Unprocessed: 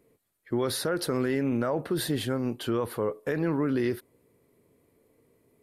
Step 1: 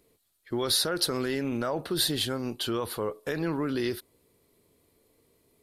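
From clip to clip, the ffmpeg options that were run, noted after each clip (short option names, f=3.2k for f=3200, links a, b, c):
-af "equalizer=f=125:t=o:w=1:g=-8,equalizer=f=250:t=o:w=1:g=-6,equalizer=f=500:t=o:w=1:g=-6,equalizer=f=1k:t=o:w=1:g=-3,equalizer=f=2k:t=o:w=1:g=-6,equalizer=f=4k:t=o:w=1:g=6,volume=5dB"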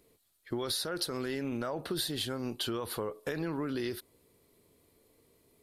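-af "acompressor=threshold=-31dB:ratio=6"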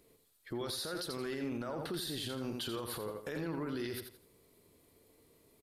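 -af "aecho=1:1:84|168|252:0.422|0.118|0.0331,alimiter=level_in=6dB:limit=-24dB:level=0:latency=1:release=53,volume=-6dB"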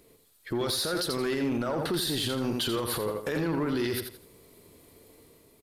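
-filter_complex "[0:a]dynaudnorm=f=120:g=7:m=3.5dB,asplit=2[a][b];[b]aeval=exprs='0.0237*(abs(mod(val(0)/0.0237+3,4)-2)-1)':c=same,volume=-9.5dB[c];[a][c]amix=inputs=2:normalize=0,volume=4.5dB"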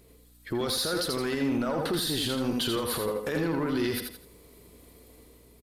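-filter_complex "[0:a]aeval=exprs='val(0)+0.00126*(sin(2*PI*60*n/s)+sin(2*PI*2*60*n/s)/2+sin(2*PI*3*60*n/s)/3+sin(2*PI*4*60*n/s)/4+sin(2*PI*5*60*n/s)/5)':c=same,asplit=2[a][b];[b]aecho=0:1:80:0.398[c];[a][c]amix=inputs=2:normalize=0"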